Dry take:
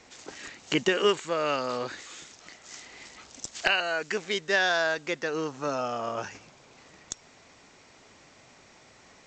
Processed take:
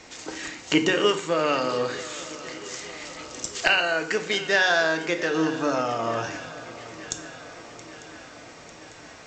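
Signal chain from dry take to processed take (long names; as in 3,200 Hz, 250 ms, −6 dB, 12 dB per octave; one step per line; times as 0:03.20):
in parallel at −1 dB: downward compressor, threshold −38 dBFS, peak gain reduction 18 dB
on the sum: feedback echo with a long and a short gap by turns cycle 898 ms, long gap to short 3 to 1, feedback 62%, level −18 dB
convolution reverb RT60 0.75 s, pre-delay 3 ms, DRR 6 dB
level +1.5 dB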